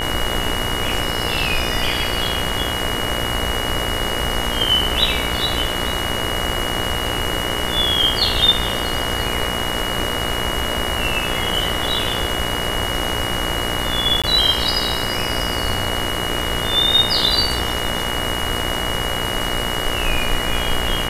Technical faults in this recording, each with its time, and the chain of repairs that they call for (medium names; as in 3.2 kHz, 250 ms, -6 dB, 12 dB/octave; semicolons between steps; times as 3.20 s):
buzz 60 Hz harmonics 38 -26 dBFS
whine 2.9 kHz -25 dBFS
14.22–14.24 s: dropout 16 ms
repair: de-hum 60 Hz, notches 38; band-stop 2.9 kHz, Q 30; interpolate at 14.22 s, 16 ms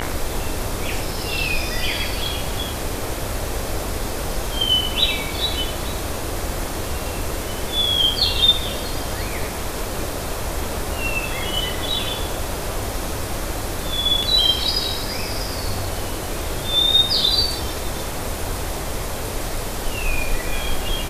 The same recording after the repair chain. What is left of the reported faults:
nothing left